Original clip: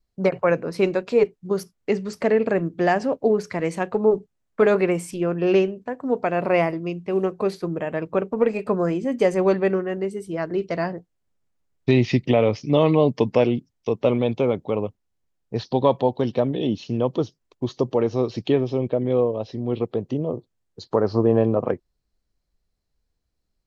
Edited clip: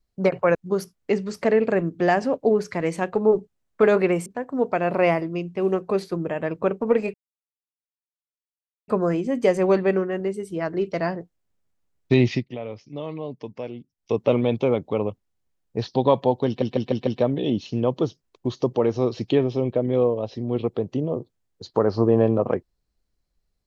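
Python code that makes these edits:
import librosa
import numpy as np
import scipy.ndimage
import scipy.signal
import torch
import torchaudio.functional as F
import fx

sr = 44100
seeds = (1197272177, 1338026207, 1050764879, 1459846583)

y = fx.edit(x, sr, fx.cut(start_s=0.55, length_s=0.79),
    fx.cut(start_s=5.05, length_s=0.72),
    fx.insert_silence(at_s=8.65, length_s=1.74),
    fx.fade_down_up(start_s=12.07, length_s=1.82, db=-15.0, fade_s=0.15),
    fx.stutter(start_s=16.24, slice_s=0.15, count=5), tone=tone)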